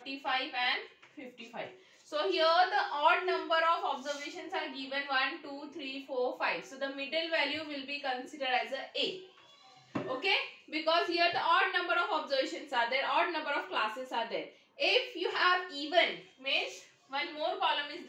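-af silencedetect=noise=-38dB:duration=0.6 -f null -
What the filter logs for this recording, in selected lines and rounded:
silence_start: 9.17
silence_end: 9.95 | silence_duration: 0.79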